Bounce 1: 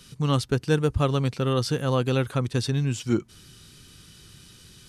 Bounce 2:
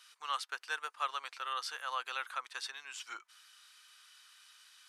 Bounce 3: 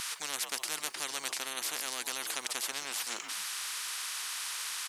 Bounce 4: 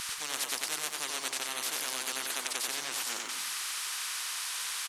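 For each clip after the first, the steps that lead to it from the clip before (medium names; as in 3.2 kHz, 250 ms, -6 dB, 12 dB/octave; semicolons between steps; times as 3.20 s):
high-pass 1.1 kHz 24 dB/octave; treble shelf 2.2 kHz -12 dB; trim +1 dB
frequency-shifting echo 128 ms, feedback 33%, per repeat -75 Hz, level -24 dB; spectrum-flattening compressor 10:1; trim +6 dB
crackle 350 per s -51 dBFS; feedback delay 92 ms, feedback 35%, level -3.5 dB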